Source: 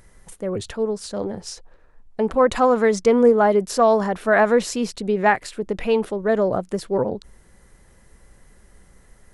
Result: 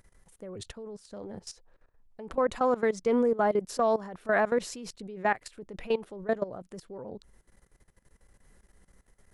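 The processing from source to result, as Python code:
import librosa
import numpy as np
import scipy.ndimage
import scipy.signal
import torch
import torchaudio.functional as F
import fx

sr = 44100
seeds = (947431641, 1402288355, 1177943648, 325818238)

y = fx.level_steps(x, sr, step_db=17)
y = F.gain(torch.from_numpy(y), -6.5).numpy()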